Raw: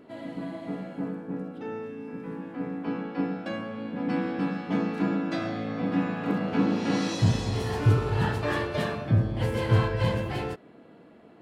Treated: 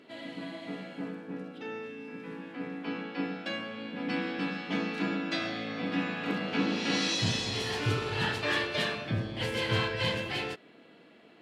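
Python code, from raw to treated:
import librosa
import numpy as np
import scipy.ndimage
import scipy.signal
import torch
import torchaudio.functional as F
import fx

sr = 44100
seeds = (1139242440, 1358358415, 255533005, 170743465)

y = fx.weighting(x, sr, curve='D')
y = y * librosa.db_to_amplitude(-4.0)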